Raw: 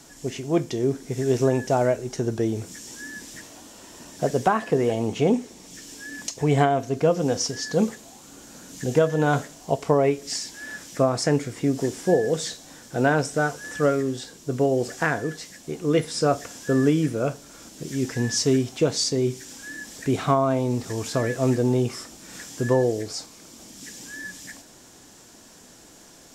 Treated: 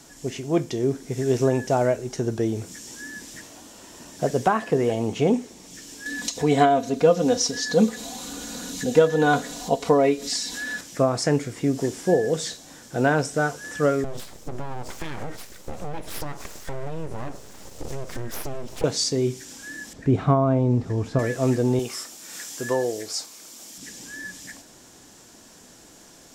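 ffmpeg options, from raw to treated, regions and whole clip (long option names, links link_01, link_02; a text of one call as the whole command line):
ffmpeg -i in.wav -filter_complex "[0:a]asettb=1/sr,asplit=3[link_01][link_02][link_03];[link_01]atrim=end=6.064[link_04];[link_02]atrim=start=6.06:end=10.81,asetpts=PTS-STARTPTS,afade=type=in:duration=0.004:curve=qsin,afade=type=out:start_time=4.746:duration=0.004:curve=qsin,aecho=1:1:4.1:0.64,atrim=end_sample=209475,acompressor=mode=upward:threshold=-25dB:ratio=2.5:attack=3.2:release=140:knee=2.83:detection=peak,equalizer=frequency=3900:width_type=o:width=0.24:gain=9[link_05];[link_03]atrim=start=10.806[link_06];[link_04][link_05]acrossfade=duration=0.004:curve1=hsin:curve2=qsin[link_07];[link_07][link_06]acrossfade=duration=0.004:curve1=qsin:curve2=hsin,asettb=1/sr,asplit=3[link_08][link_09][link_10];[link_08]atrim=end=14.044[link_11];[link_09]atrim=start=14.04:end=18.84,asetpts=PTS-STARTPTS,afade=type=in:duration=0.004:curve=qsin,afade=type=out:start_time=4.796:duration=0.004:curve=qsin,lowshelf=frequency=430:gain=10.5,aeval=exprs='abs(val(0))':channel_layout=same,acompressor=threshold=-25dB:ratio=12:attack=3.2:release=140:knee=1:detection=peak[link_12];[link_10]atrim=start=18.836[link_13];[link_11][link_12]acrossfade=duration=0.004:curve1=hsin:curve2=qsin[link_14];[link_14][link_13]acrossfade=duration=0.004:curve1=qsin:curve2=hsin,asettb=1/sr,asplit=3[link_15][link_16][link_17];[link_15]atrim=end=19.934[link_18];[link_16]atrim=start=19.93:end=21.19,asetpts=PTS-STARTPTS,afade=type=in:duration=0.004:curve=qsin,afade=type=out:start_time=1.256:duration=0.004:curve=qsin,lowpass=frequency=1200:poles=1,lowshelf=frequency=170:gain=10[link_19];[link_17]atrim=start=21.186[link_20];[link_18][link_19]acrossfade=duration=0.004:curve1=hsin:curve2=qsin[link_21];[link_21][link_20]acrossfade=duration=0.004:curve1=qsin:curve2=hsin,asettb=1/sr,asplit=3[link_22][link_23][link_24];[link_22]atrim=end=21.794[link_25];[link_23]atrim=start=21.79:end=23.78,asetpts=PTS-STARTPTS,afade=type=in:duration=0.004:curve=qsin,afade=type=out:start_time=1.986:duration=0.004:curve=qsin,lowpass=frequency=3200:poles=1,aemphasis=mode=production:type=riaa[link_26];[link_24]atrim=start=23.776[link_27];[link_25][link_26]acrossfade=duration=0.004:curve1=hsin:curve2=qsin[link_28];[link_28][link_27]acrossfade=duration=0.004:curve1=qsin:curve2=hsin" out.wav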